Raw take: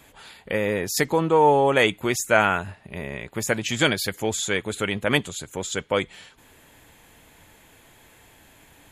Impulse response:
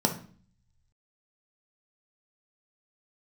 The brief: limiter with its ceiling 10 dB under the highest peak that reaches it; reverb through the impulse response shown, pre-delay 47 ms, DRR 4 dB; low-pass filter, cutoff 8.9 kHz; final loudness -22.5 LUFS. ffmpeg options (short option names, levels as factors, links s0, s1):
-filter_complex "[0:a]lowpass=8900,alimiter=limit=0.237:level=0:latency=1,asplit=2[s0][s1];[1:a]atrim=start_sample=2205,adelay=47[s2];[s1][s2]afir=irnorm=-1:irlink=0,volume=0.188[s3];[s0][s3]amix=inputs=2:normalize=0"